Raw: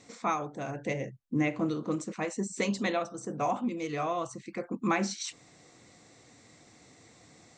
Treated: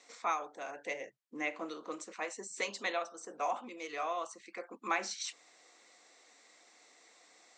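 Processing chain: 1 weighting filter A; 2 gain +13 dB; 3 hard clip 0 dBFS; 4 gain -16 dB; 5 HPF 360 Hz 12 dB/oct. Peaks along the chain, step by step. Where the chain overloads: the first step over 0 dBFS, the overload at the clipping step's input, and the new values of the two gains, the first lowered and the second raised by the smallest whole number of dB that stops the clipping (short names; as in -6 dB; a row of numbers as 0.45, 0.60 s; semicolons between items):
-15.5, -2.5, -2.5, -18.5, -19.0 dBFS; no overload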